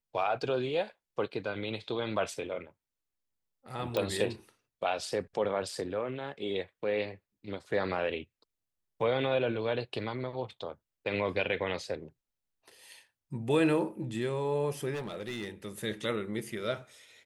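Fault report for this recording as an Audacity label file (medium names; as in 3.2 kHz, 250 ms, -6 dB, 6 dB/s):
3.970000	3.970000	pop -18 dBFS
14.930000	15.500000	clipped -32.5 dBFS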